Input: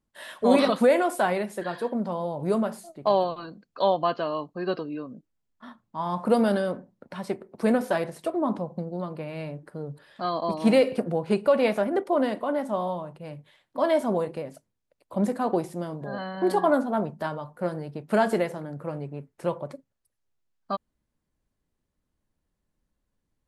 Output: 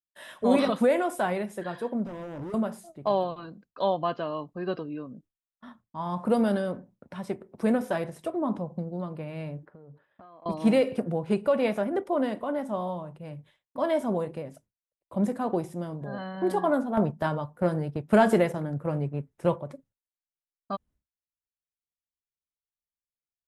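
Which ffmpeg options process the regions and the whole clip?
ffmpeg -i in.wav -filter_complex "[0:a]asettb=1/sr,asplit=3[link_01][link_02][link_03];[link_01]atrim=end=2.054[link_04];[link_02]atrim=start=2.05:end=2.54,asetpts=PTS-STARTPTS,afade=type=in:duration=0.004:curve=qsin,afade=type=out:start_time=0.486:duration=0.004:curve=qsin,equalizer=frequency=310:width=1.8:gain=12,acompressor=threshold=-26dB:ratio=10:attack=3.2:release=140:knee=1:detection=peak,volume=32.5dB,asoftclip=hard,volume=-32.5dB[link_05];[link_03]atrim=start=2.536[link_06];[link_04][link_05]acrossfade=duration=0.004:curve1=hsin:curve2=qsin[link_07];[link_07][link_06]acrossfade=duration=0.004:curve1=qsin:curve2=hsin,asettb=1/sr,asplit=3[link_08][link_09][link_10];[link_08]atrim=end=9.654[link_11];[link_09]atrim=start=9.65:end=10.46,asetpts=PTS-STARTPTS,afade=type=in:duration=0.004:curve=qsin,afade=type=out:start_time=0.806:duration=0.004:curve=qsin,lowpass=1800,lowshelf=frequency=280:gain=-10.5,acompressor=threshold=-43dB:ratio=12:attack=3.2:release=140:knee=1:detection=peak[link_12];[link_10]atrim=start=10.456[link_13];[link_11][link_12]acrossfade=duration=0.004:curve1=hsin:curve2=qsin[link_14];[link_14][link_13]acrossfade=duration=0.004:curve1=qsin:curve2=hsin,asettb=1/sr,asplit=3[link_15][link_16][link_17];[link_15]atrim=end=16.974[link_18];[link_16]atrim=start=16.97:end=19.56,asetpts=PTS-STARTPTS,afade=type=in:duration=0.004:curve=qsin,afade=type=out:start_time=2.586:duration=0.004:curve=qsin,agate=range=-7dB:threshold=-38dB:ratio=16:release=100:detection=peak,acontrast=47[link_19];[link_17]atrim=start=19.556[link_20];[link_18][link_19]acrossfade=duration=0.004:curve1=hsin:curve2=qsin[link_21];[link_21][link_20]acrossfade=duration=0.004:curve1=qsin:curve2=hsin,bandreject=frequency=4400:width=8.5,agate=range=-33dB:threshold=-51dB:ratio=3:detection=peak,equalizer=frequency=65:width=0.45:gain=8.5,volume=-4dB" out.wav

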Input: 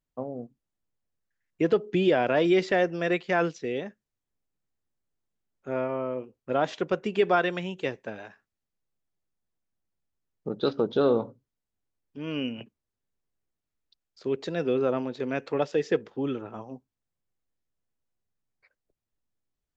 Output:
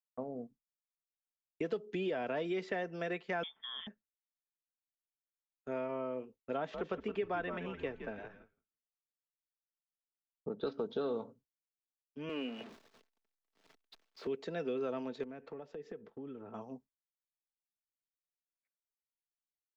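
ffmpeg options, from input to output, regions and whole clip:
ffmpeg -i in.wav -filter_complex "[0:a]asettb=1/sr,asplit=3[link_01][link_02][link_03];[link_01]atrim=end=3.434[link_04];[link_02]atrim=start=3.43:end=3.87,asetpts=PTS-STARTPTS,afade=type=in:duration=0.004:curve=qsin,afade=type=out:start_time=0.436:duration=0.004:curve=qsin,aemphasis=mode=reproduction:type=75kf,lowpass=frequency=3100:width_type=q:width=0.5098,lowpass=frequency=3100:width_type=q:width=0.6013,lowpass=frequency=3100:width_type=q:width=0.9,lowpass=frequency=3100:width_type=q:width=2.563,afreqshift=-3700[link_05];[link_03]atrim=start=3.866[link_06];[link_04][link_05]acrossfade=duration=0.004:curve1=hsin:curve2=qsin[link_07];[link_07][link_06]acrossfade=duration=0.004:curve1=qsin:curve2=hsin,asettb=1/sr,asplit=3[link_08][link_09][link_10];[link_08]atrim=end=6.574[link_11];[link_09]atrim=start=6.57:end=10.67,asetpts=PTS-STARTPTS,afade=type=in:duration=0.004:curve=qsin,afade=type=out:start_time=4.096:duration=0.004:curve=qsin,bass=frequency=250:gain=0,treble=frequency=4000:gain=-15,asplit=5[link_12][link_13][link_14][link_15][link_16];[link_13]adelay=166,afreqshift=-97,volume=-11.5dB[link_17];[link_14]adelay=332,afreqshift=-194,volume=-20.1dB[link_18];[link_15]adelay=498,afreqshift=-291,volume=-28.8dB[link_19];[link_16]adelay=664,afreqshift=-388,volume=-37.4dB[link_20];[link_12][link_17][link_18][link_19][link_20]amix=inputs=5:normalize=0,atrim=end_sample=180810[link_21];[link_10]atrim=start=10.666[link_22];[link_11][link_21]acrossfade=duration=0.004:curve1=hsin:curve2=qsin[link_23];[link_23][link_22]acrossfade=duration=0.004:curve1=qsin:curve2=hsin,asettb=1/sr,asplit=3[link_24][link_25][link_26];[link_24]atrim=end=12.294[link_27];[link_25]atrim=start=12.29:end=14.27,asetpts=PTS-STARTPTS,afade=type=in:duration=0.004:curve=qsin,afade=type=out:start_time=1.976:duration=0.004:curve=qsin,aeval=exprs='val(0)+0.5*0.0141*sgn(val(0))':channel_layout=same,acrossover=split=230 5100:gain=0.112 1 0.126[link_28][link_29][link_30];[link_28][link_29][link_30]amix=inputs=3:normalize=0[link_31];[link_26]atrim=start=14.266[link_32];[link_27][link_31]acrossfade=duration=0.004:curve1=hsin:curve2=qsin[link_33];[link_33][link_32]acrossfade=duration=0.004:curve1=qsin:curve2=hsin,asettb=1/sr,asplit=3[link_34][link_35][link_36];[link_34]atrim=end=15.234[link_37];[link_35]atrim=start=15.23:end=16.54,asetpts=PTS-STARTPTS,afade=type=in:duration=0.004:curve=qsin,afade=type=out:start_time=1.306:duration=0.004:curve=qsin,lowpass=frequency=1100:poles=1,acompressor=threshold=-36dB:ratio=12:attack=3.2:release=140:knee=1:detection=peak[link_38];[link_36]atrim=start=16.536[link_39];[link_37][link_38]acrossfade=duration=0.004:curve1=hsin:curve2=qsin[link_40];[link_40][link_39]acrossfade=duration=0.004:curve1=qsin:curve2=hsin,agate=range=-33dB:threshold=-46dB:ratio=3:detection=peak,aecho=1:1:4.5:0.32,acrossover=split=270|2600[link_41][link_42][link_43];[link_41]acompressor=threshold=-42dB:ratio=4[link_44];[link_42]acompressor=threshold=-29dB:ratio=4[link_45];[link_43]acompressor=threshold=-50dB:ratio=4[link_46];[link_44][link_45][link_46]amix=inputs=3:normalize=0,volume=-6dB" out.wav

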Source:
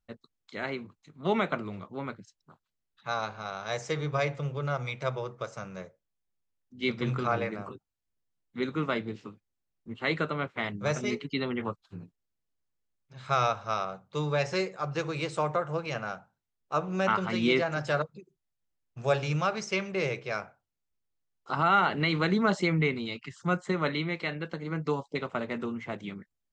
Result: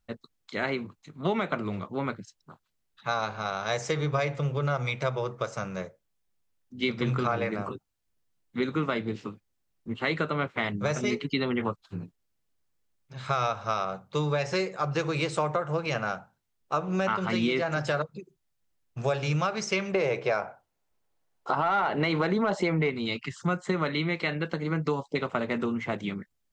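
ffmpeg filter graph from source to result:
ffmpeg -i in.wav -filter_complex "[0:a]asettb=1/sr,asplit=3[link_01][link_02][link_03];[link_01]atrim=end=19.944[link_04];[link_02]atrim=start=19.94:end=22.9,asetpts=PTS-STARTPTS,afade=type=in:duration=0.004:curve=qsin,afade=type=out:start_time=2.956:duration=0.004:curve=qsin,equalizer=frequency=720:width=0.61:gain=10.5,bandreject=frequency=1200:width=20[link_05];[link_03]atrim=start=22.896[link_06];[link_04][link_05]acrossfade=duration=0.004:curve1=hsin:curve2=qsin[link_07];[link_07][link_06]acrossfade=duration=0.004:curve1=qsin:curve2=hsin,acontrast=65,alimiter=limit=-11.5dB:level=0:latency=1:release=255,acompressor=threshold=-25dB:ratio=2.5" out.wav

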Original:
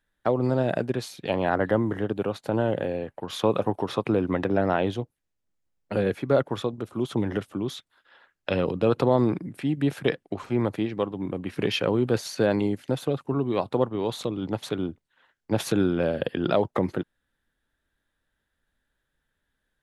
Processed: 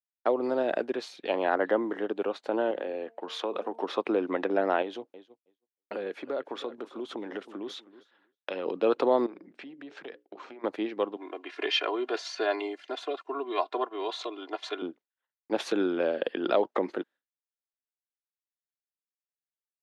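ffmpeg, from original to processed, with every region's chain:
ffmpeg -i in.wav -filter_complex "[0:a]asettb=1/sr,asplit=3[link_01][link_02][link_03];[link_01]atrim=end=2.714[link_04];[link_02]atrim=start=2.71:end=3.83,asetpts=PTS-STARTPTS,afade=type=in:duration=0.004:curve=qsin,afade=type=out:start_time=1.116:duration=0.004:curve=qsin,highpass=frequency=160:width=0.5412,highpass=frequency=160:width=1.3066,bandreject=frequency=227.7:width_type=h:width=4,bandreject=frequency=455.4:width_type=h:width=4,bandreject=frequency=683.1:width_type=h:width=4,bandreject=frequency=910.8:width_type=h:width=4,acompressor=threshold=-27dB:ratio=2.5:attack=3.2:release=140:knee=1:detection=peak[link_05];[link_03]atrim=start=3.826[link_06];[link_04][link_05]acrossfade=duration=0.004:curve1=hsin:curve2=qsin[link_07];[link_07][link_06]acrossfade=duration=0.004:curve1=qsin:curve2=hsin,asettb=1/sr,asplit=3[link_08][link_09][link_10];[link_08]atrim=end=4.824[link_11];[link_09]atrim=start=4.82:end=8.66,asetpts=PTS-STARTPTS,afade=type=in:duration=0.004:curve=qsin,afade=type=out:start_time=3.836:duration=0.004:curve=qsin,aecho=1:1:318|636|954:0.112|0.0359|0.0115,atrim=end_sample=169344,acompressor=threshold=-29dB:ratio=2.5:attack=3.2:release=140:knee=1:detection=peak[link_12];[link_10]atrim=start=8.656[link_13];[link_11][link_12]acrossfade=duration=0.004:curve1=hsin:curve2=qsin[link_14];[link_14][link_13]acrossfade=duration=0.004:curve1=qsin:curve2=hsin,asettb=1/sr,asplit=3[link_15][link_16][link_17];[link_15]atrim=end=9.264[link_18];[link_16]atrim=start=9.26:end=10.64,asetpts=PTS-STARTPTS,afade=type=in:duration=0.004:curve=qsin,afade=type=out:start_time=1.376:duration=0.004:curve=qsin,lowpass=frequency=7100:width=0.5412,lowpass=frequency=7100:width=1.3066,acompressor=threshold=-37dB:ratio=4:attack=3.2:release=140:knee=1:detection=peak,bandreject=frequency=60:width_type=h:width=6,bandreject=frequency=120:width_type=h:width=6,bandreject=frequency=180:width_type=h:width=6,bandreject=frequency=240:width_type=h:width=6,bandreject=frequency=300:width_type=h:width=6,bandreject=frequency=360:width_type=h:width=6,bandreject=frequency=420:width_type=h:width=6,bandreject=frequency=480:width_type=h:width=6,bandreject=frequency=540:width_type=h:width=6[link_19];[link_17]atrim=start=10.636[link_20];[link_18][link_19]acrossfade=duration=0.004:curve1=hsin:curve2=qsin[link_21];[link_21][link_20]acrossfade=duration=0.004:curve1=qsin:curve2=hsin,asettb=1/sr,asplit=3[link_22][link_23][link_24];[link_22]atrim=end=11.164[link_25];[link_23]atrim=start=11.16:end=14.82,asetpts=PTS-STARTPTS,afade=type=in:duration=0.004:curve=qsin,afade=type=out:start_time=3.656:duration=0.004:curve=qsin,highpass=600,lowpass=7300,aecho=1:1:2.9:0.99,atrim=end_sample=161406[link_26];[link_24]atrim=start=14.816[link_27];[link_25][link_26]acrossfade=duration=0.004:curve1=hsin:curve2=qsin[link_28];[link_28][link_27]acrossfade=duration=0.004:curve1=qsin:curve2=hsin,highpass=frequency=290:width=0.5412,highpass=frequency=290:width=1.3066,agate=range=-33dB:threshold=-46dB:ratio=3:detection=peak,lowpass=5000,volume=-1.5dB" out.wav

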